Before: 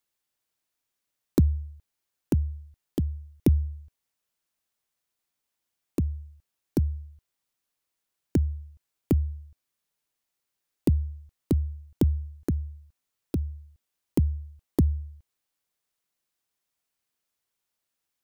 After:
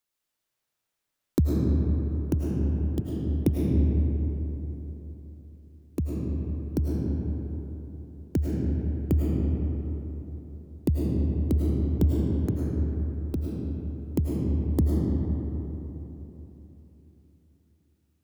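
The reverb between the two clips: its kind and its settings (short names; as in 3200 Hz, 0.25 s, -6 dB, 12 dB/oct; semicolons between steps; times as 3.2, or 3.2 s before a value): digital reverb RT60 3.7 s, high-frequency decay 0.45×, pre-delay 65 ms, DRR -3.5 dB; gain -2.5 dB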